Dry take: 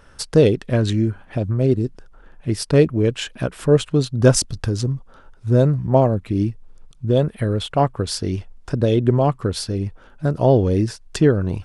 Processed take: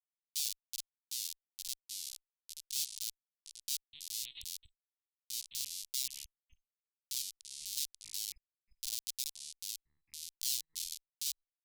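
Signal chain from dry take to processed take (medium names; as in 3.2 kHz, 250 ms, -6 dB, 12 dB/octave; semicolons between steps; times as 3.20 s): Schmitt trigger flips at -12.5 dBFS; 3.93–5.55 s: LPC vocoder at 8 kHz pitch kept; ever faster or slower copies 664 ms, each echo -4 st, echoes 3; inverse Chebyshev high-pass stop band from 1.6 kHz, stop band 50 dB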